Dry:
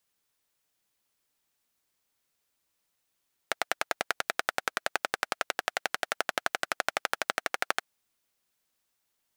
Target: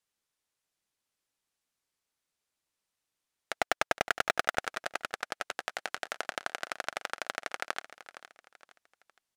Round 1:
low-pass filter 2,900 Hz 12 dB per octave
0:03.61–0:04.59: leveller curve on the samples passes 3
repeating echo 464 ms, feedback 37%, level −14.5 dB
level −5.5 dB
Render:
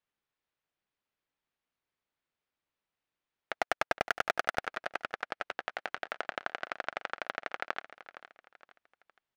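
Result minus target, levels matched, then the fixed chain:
8,000 Hz band −7.5 dB
low-pass filter 11,000 Hz 12 dB per octave
0:03.61–0:04.59: leveller curve on the samples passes 3
repeating echo 464 ms, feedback 37%, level −14.5 dB
level −5.5 dB

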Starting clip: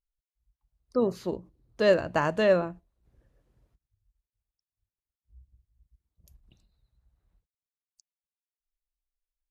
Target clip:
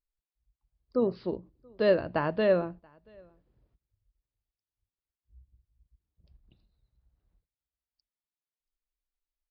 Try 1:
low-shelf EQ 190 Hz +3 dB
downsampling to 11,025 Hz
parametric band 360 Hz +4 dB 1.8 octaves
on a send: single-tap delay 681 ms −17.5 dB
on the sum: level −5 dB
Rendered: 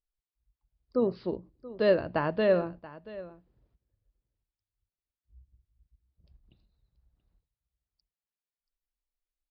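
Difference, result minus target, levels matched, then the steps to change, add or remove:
echo-to-direct +12 dB
change: single-tap delay 681 ms −29.5 dB

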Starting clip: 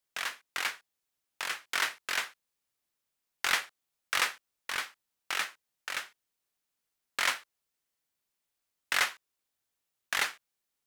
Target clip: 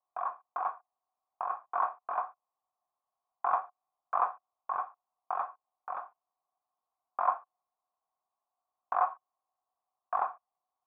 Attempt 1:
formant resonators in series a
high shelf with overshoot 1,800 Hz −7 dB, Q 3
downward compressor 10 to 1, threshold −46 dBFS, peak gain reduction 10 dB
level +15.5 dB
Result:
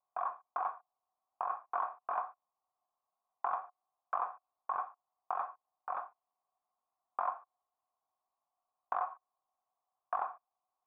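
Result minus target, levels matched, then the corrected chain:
downward compressor: peak gain reduction +10 dB
formant resonators in series a
high shelf with overshoot 1,800 Hz −7 dB, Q 3
level +15.5 dB

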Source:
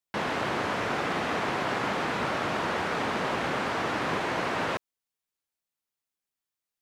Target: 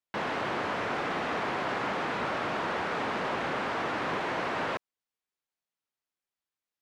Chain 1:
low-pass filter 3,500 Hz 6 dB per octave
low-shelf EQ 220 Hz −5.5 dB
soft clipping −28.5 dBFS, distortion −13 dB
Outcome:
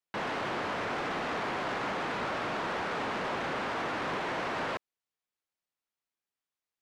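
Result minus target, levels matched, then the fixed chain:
soft clipping: distortion +7 dB
low-pass filter 3,500 Hz 6 dB per octave
low-shelf EQ 220 Hz −5.5 dB
soft clipping −22.5 dBFS, distortion −21 dB

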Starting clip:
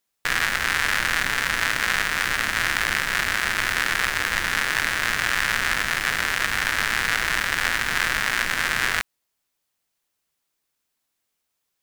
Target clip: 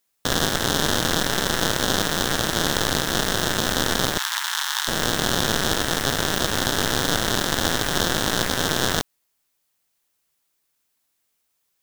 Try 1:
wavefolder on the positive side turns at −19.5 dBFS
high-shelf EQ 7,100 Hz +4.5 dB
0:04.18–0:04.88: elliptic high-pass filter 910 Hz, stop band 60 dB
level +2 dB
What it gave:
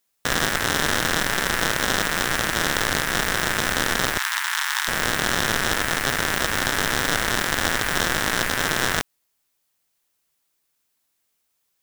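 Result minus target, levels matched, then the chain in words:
wavefolder on the positive side: distortion −8 dB
wavefolder on the positive side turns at −26.5 dBFS
high-shelf EQ 7,100 Hz +4.5 dB
0:04.18–0:04.88: elliptic high-pass filter 910 Hz, stop band 60 dB
level +2 dB

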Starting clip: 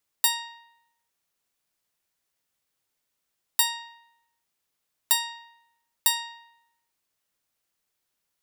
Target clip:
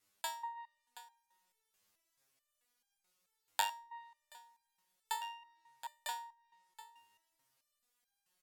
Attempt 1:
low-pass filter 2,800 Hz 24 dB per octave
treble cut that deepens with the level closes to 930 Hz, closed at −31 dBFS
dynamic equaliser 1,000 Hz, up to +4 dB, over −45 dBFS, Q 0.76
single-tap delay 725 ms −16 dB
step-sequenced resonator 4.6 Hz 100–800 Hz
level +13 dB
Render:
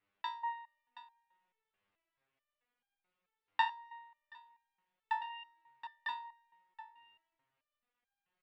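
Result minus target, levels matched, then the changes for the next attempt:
2,000 Hz band +3.0 dB
remove: low-pass filter 2,800 Hz 24 dB per octave

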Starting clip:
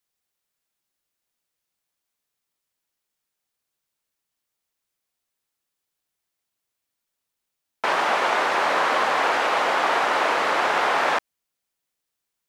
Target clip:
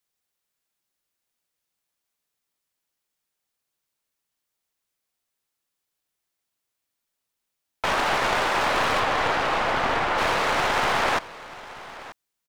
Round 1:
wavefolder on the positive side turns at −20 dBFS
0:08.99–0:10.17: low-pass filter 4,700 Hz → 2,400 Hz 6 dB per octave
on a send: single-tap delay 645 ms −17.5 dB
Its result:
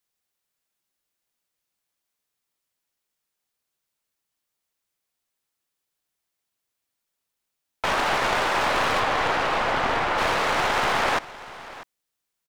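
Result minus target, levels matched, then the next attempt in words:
echo 289 ms early
wavefolder on the positive side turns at −20 dBFS
0:08.99–0:10.17: low-pass filter 4,700 Hz → 2,400 Hz 6 dB per octave
on a send: single-tap delay 934 ms −17.5 dB

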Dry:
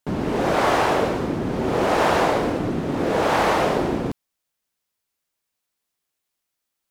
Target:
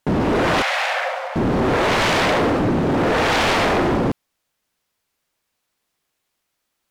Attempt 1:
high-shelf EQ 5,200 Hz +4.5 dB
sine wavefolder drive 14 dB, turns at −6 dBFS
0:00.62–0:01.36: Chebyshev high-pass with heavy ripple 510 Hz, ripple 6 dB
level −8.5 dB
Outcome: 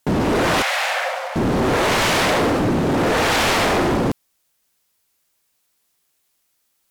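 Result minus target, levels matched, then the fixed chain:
8,000 Hz band +5.5 dB
high-shelf EQ 5,200 Hz −7 dB
sine wavefolder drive 14 dB, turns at −6 dBFS
0:00.62–0:01.36: Chebyshev high-pass with heavy ripple 510 Hz, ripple 6 dB
level −8.5 dB

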